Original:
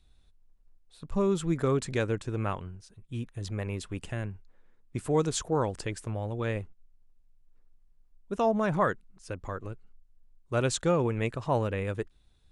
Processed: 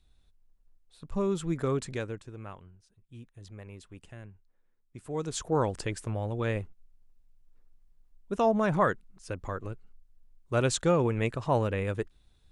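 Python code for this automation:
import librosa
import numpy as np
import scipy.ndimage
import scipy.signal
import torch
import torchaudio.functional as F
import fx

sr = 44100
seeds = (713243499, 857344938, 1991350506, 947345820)

y = fx.gain(x, sr, db=fx.line((1.82, -2.5), (2.35, -12.0), (4.99, -12.0), (5.56, 1.0)))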